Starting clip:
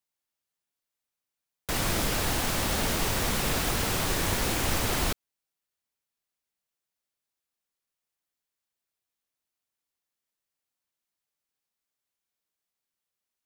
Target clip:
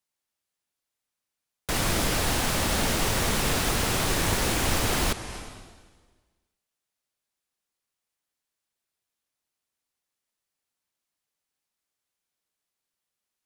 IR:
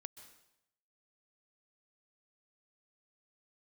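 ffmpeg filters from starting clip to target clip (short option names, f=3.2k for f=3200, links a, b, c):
-filter_complex "[0:a]asplit=2[a][b];[1:a]atrim=start_sample=2205,asetrate=23373,aresample=44100[c];[b][c]afir=irnorm=-1:irlink=0,volume=6dB[d];[a][d]amix=inputs=2:normalize=0,volume=-5.5dB"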